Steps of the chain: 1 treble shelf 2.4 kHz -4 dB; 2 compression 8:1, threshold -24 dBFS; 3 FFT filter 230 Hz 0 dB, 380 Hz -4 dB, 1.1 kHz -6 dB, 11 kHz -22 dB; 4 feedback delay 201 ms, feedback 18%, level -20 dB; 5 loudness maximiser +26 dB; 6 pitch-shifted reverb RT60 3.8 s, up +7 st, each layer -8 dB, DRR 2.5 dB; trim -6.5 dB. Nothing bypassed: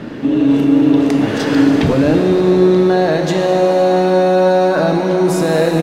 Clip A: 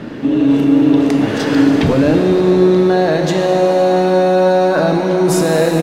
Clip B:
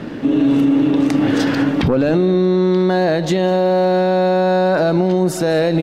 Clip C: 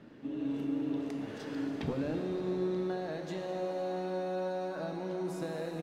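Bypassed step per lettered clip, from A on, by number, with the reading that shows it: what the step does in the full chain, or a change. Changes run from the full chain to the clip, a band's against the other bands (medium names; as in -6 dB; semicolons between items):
2, mean gain reduction 5.5 dB; 6, momentary loudness spread change -1 LU; 5, crest factor change +3.0 dB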